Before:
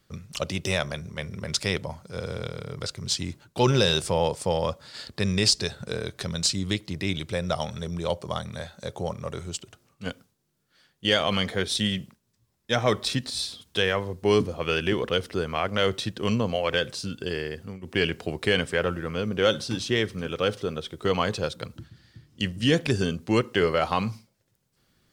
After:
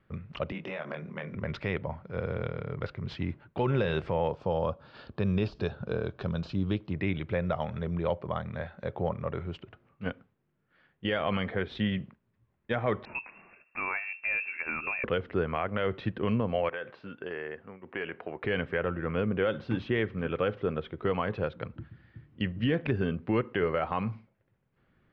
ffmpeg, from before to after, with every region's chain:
-filter_complex "[0:a]asettb=1/sr,asplit=3[a][b][c];[a]atrim=end=0.524[d];[b]atrim=start=0.52:end=1.35,asetpts=PTS-STARTPTS,afade=t=in:d=0.004:c=qsin,afade=t=out:st=0.826:d=0.004:c=qsin,highpass=f=170:w=0.5412,highpass=f=170:w=1.3066,acompressor=threshold=-31dB:ratio=12:attack=3.2:release=140:knee=1:detection=peak,asplit=2[e][f];[f]adelay=25,volume=-4dB[g];[e][g]amix=inputs=2:normalize=0,atrim=end_sample=36603[h];[c]atrim=start=1.346[i];[d][h]acrossfade=d=0.004:c1=hsin:c2=qsin[j];[j][i]acrossfade=d=0.004:c1=qsin:c2=hsin,asettb=1/sr,asplit=3[k][l][m];[k]atrim=end=4.314[n];[l]atrim=start=4.31:end=6.92,asetpts=PTS-STARTPTS,afade=t=in:d=0.004:c=qsin,afade=t=out:st=2.606:d=0.004:c=qsin,deesser=0.5,lowpass=f=6.9k:t=q:w=1.5,equalizer=f=2k:t=o:w=0.39:g=-14.5[o];[m]atrim=start=6.916[p];[n][o]acrossfade=d=0.004:c1=hsin:c2=qsin[q];[q][p]acrossfade=d=0.004:c1=qsin:c2=hsin,asettb=1/sr,asplit=3[r][s][t];[r]atrim=end=13.054[u];[s]atrim=start=13.05:end=15.04,asetpts=PTS-STARTPTS,afade=t=in:d=0.004:c=qsin,afade=t=out:st=1.986:d=0.004:c=qsin,acompressor=threshold=-29dB:ratio=2:attack=3.2:release=140:knee=1:detection=peak,lowpass=f=2.4k:t=q:w=0.5098,lowpass=f=2.4k:t=q:w=0.6013,lowpass=f=2.4k:t=q:w=0.9,lowpass=f=2.4k:t=q:w=2.563,afreqshift=-2800[v];[t]atrim=start=15.036[w];[u][v]acrossfade=d=0.004:c1=hsin:c2=qsin[x];[x][w]acrossfade=d=0.004:c1=qsin:c2=hsin,asettb=1/sr,asplit=3[y][z][aa];[y]atrim=end=16.694[ab];[z]atrim=start=16.69:end=18.44,asetpts=PTS-STARTPTS,afade=t=in:d=0.004:c=qsin,afade=t=out:st=1.746:d=0.004:c=qsin,bandpass=f=1.1k:t=q:w=0.61,acompressor=threshold=-31dB:ratio=2.5:attack=3.2:release=140:knee=1:detection=peak[ac];[aa]atrim=start=18.436[ad];[ab][ac]acrossfade=d=0.004:c1=hsin:c2=qsin[ae];[ae][ad]acrossfade=d=0.004:c1=qsin:c2=hsin,lowpass=f=2.4k:w=0.5412,lowpass=f=2.4k:w=1.3066,alimiter=limit=-17dB:level=0:latency=1:release=229"

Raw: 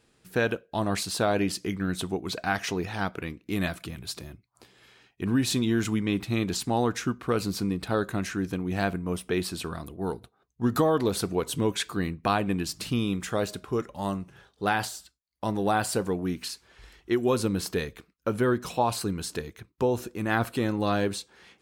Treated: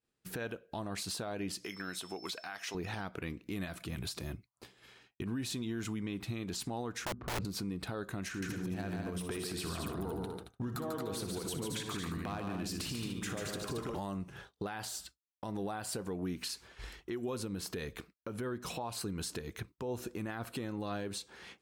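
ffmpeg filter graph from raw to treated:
-filter_complex "[0:a]asettb=1/sr,asplit=3[a][b][c];[a]atrim=end=1.644[d];[b]atrim=start=1.64:end=2.75,asetpts=PTS-STARTPTS,afade=t=in:d=0.004:c=qsin,afade=t=out:st=1.106:d=0.004:c=qsin,highpass=f=1k:p=1,aeval=exprs='val(0)+0.00251*sin(2*PI*5300*n/s)':c=same[e];[c]atrim=start=2.746[f];[d][e]acrossfade=d=0.004:c1=hsin:c2=qsin[g];[g][f]acrossfade=d=0.004:c1=qsin:c2=hsin,asettb=1/sr,asplit=3[h][i][j];[h]atrim=end=7.054[k];[i]atrim=start=7.05:end=7.45,asetpts=PTS-STARTPTS,afade=t=in:d=0.004:c=qsin,afade=t=out:st=0.396:d=0.004:c=qsin,bass=f=250:g=8,treble=f=4k:g=7,adynamicsmooth=sensitivity=1:basefreq=690,aeval=exprs='(mod(11.2*val(0)+1,2)-1)/11.2':c=same[l];[j]atrim=start=7.446[m];[k][l]acrossfade=d=0.004:c1=hsin:c2=qsin[n];[n][m]acrossfade=d=0.004:c1=qsin:c2=hsin,asettb=1/sr,asplit=3[o][p][q];[o]atrim=end=8.284[r];[p]atrim=start=8.28:end=13.99,asetpts=PTS-STARTPTS,afade=t=in:d=0.004:c=qsin,afade=t=out:st=5.706:d=0.004:c=qsin,acompressor=threshold=-36dB:ratio=8:attack=3.2:release=140:knee=1:detection=peak,asoftclip=type=hard:threshold=-32.5dB,aecho=1:1:60|143|223|295:0.282|0.596|0.473|0.178,atrim=end_sample=251811[s];[q]atrim=start=13.986[t];[r][s]acrossfade=d=0.004:c1=hsin:c2=qsin[u];[u][t]acrossfade=d=0.004:c1=qsin:c2=hsin,agate=range=-33dB:threshold=-50dB:ratio=3:detection=peak,acompressor=threshold=-37dB:ratio=6,alimiter=level_in=9.5dB:limit=-24dB:level=0:latency=1:release=110,volume=-9.5dB,volume=4.5dB"

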